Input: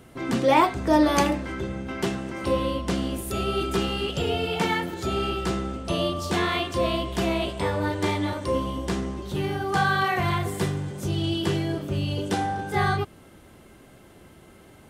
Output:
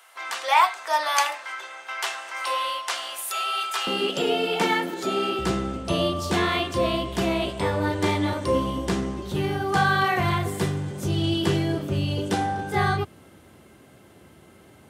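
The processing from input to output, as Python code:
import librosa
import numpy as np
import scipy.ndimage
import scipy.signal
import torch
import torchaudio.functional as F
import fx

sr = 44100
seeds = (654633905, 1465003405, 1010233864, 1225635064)

y = fx.highpass(x, sr, hz=fx.steps((0.0, 840.0), (3.87, 210.0), (5.39, 66.0)), slope=24)
y = fx.rider(y, sr, range_db=5, speed_s=2.0)
y = F.gain(torch.from_numpy(y), 2.0).numpy()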